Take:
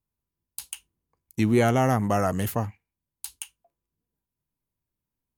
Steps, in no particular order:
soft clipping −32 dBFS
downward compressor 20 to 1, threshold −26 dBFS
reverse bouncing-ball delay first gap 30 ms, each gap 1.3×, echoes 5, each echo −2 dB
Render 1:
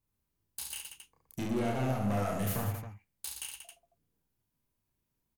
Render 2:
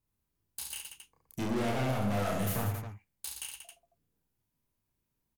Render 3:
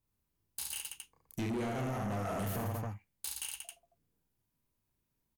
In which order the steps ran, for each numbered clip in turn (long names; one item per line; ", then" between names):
downward compressor, then soft clipping, then reverse bouncing-ball delay
soft clipping, then reverse bouncing-ball delay, then downward compressor
reverse bouncing-ball delay, then downward compressor, then soft clipping